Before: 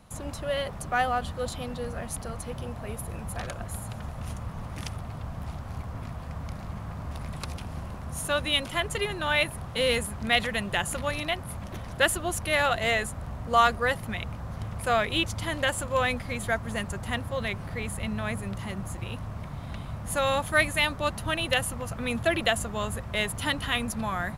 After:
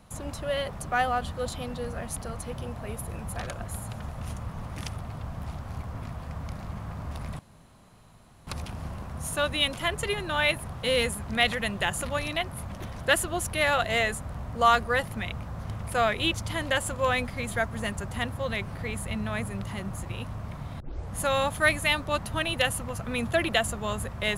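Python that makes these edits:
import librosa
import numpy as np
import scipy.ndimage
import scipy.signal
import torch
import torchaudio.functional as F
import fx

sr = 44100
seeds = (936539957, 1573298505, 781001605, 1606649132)

y = fx.edit(x, sr, fx.insert_room_tone(at_s=7.39, length_s=1.08),
    fx.tape_start(start_s=19.72, length_s=0.33), tone=tone)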